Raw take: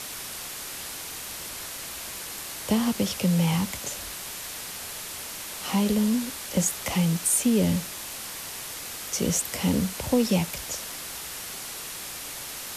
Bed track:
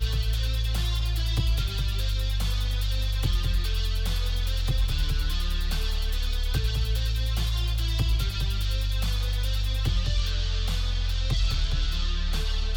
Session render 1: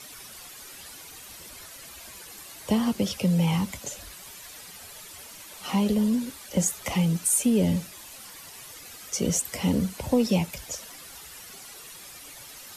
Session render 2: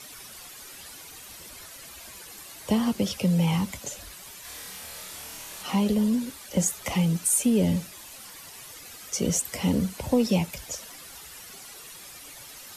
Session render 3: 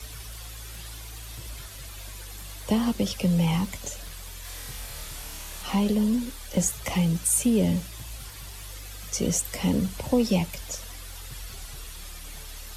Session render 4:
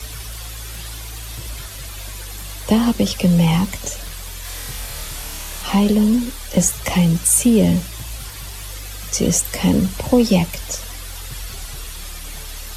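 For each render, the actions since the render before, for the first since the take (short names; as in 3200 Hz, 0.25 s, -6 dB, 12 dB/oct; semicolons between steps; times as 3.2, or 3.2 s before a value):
denoiser 11 dB, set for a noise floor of -37 dBFS
4.42–5.63 flutter echo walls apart 4.6 m, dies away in 0.66 s
add bed track -16.5 dB
gain +8.5 dB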